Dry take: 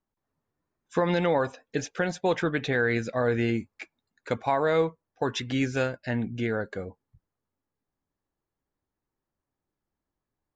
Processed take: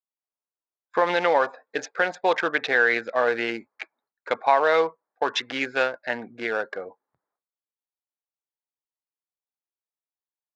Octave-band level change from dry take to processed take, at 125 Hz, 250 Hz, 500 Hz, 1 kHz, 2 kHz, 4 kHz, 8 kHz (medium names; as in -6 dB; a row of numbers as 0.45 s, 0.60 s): -17.5 dB, -6.0 dB, +3.0 dB, +7.5 dB, +7.5 dB, +5.5 dB, no reading